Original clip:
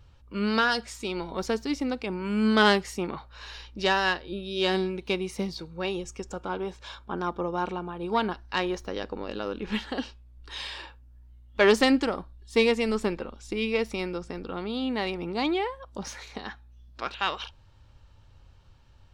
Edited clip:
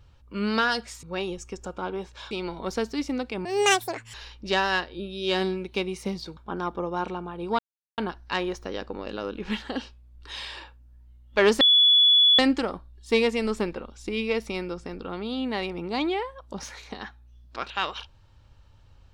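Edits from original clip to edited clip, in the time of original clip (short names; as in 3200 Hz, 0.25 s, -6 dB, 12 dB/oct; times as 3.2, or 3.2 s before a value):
2.17–3.47 speed 189%
5.7–6.98 move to 1.03
8.2 insert silence 0.39 s
11.83 add tone 3420 Hz -14 dBFS 0.78 s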